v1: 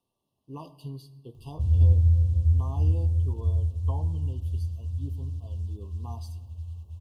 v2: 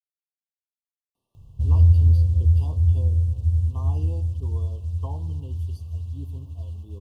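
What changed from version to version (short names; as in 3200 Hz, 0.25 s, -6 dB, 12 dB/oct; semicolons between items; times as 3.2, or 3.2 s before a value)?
speech: entry +1.15 s; background +4.0 dB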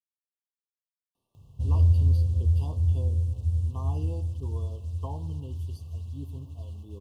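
background: add HPF 130 Hz 6 dB/oct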